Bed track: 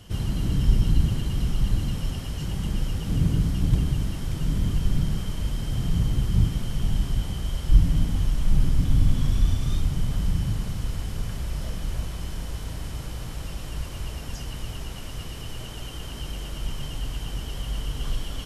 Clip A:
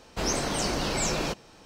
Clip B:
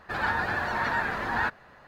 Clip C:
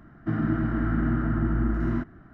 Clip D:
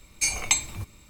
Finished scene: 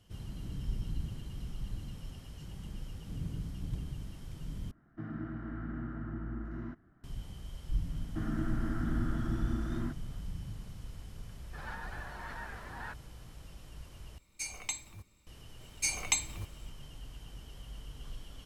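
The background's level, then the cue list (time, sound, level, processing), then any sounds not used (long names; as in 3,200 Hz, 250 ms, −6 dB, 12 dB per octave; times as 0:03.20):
bed track −16.5 dB
0:04.71: overwrite with C −15 dB
0:07.89: mix in C −10 dB
0:11.44: mix in B −17 dB
0:14.18: overwrite with D −14.5 dB
0:15.61: mix in D −7 dB
not used: A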